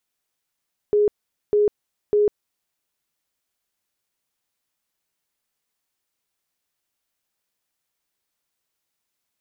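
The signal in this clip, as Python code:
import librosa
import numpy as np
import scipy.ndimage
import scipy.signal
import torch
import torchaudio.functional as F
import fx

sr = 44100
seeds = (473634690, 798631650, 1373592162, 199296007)

y = fx.tone_burst(sr, hz=416.0, cycles=62, every_s=0.6, bursts=3, level_db=-14.0)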